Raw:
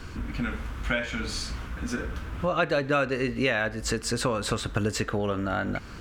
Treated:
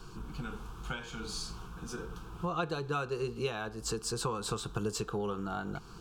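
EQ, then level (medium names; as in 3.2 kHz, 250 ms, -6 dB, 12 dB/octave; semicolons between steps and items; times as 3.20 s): static phaser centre 390 Hz, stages 8; -4.0 dB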